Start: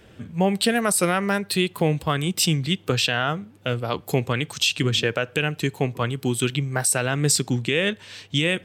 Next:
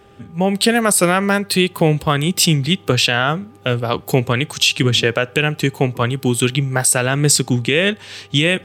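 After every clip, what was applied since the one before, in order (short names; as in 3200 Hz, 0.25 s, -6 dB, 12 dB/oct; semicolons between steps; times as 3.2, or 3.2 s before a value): AGC gain up to 9.5 dB; buzz 400 Hz, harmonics 3, -51 dBFS -4 dB/oct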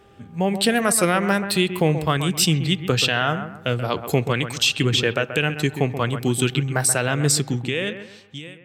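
ending faded out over 1.53 s; analogue delay 0.131 s, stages 2048, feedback 32%, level -10 dB; gain -4.5 dB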